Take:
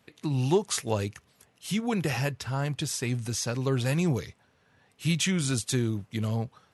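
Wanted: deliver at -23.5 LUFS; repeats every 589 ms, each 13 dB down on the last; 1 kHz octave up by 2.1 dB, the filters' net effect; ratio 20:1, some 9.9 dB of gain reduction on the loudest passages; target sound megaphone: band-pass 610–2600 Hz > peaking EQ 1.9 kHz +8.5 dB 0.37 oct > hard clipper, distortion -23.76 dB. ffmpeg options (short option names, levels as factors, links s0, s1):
-af "equalizer=f=1000:t=o:g=3.5,acompressor=threshold=0.0447:ratio=20,highpass=610,lowpass=2600,equalizer=f=1900:t=o:w=0.37:g=8.5,aecho=1:1:589|1178|1767:0.224|0.0493|0.0108,asoftclip=type=hard:threshold=0.0531,volume=6.31"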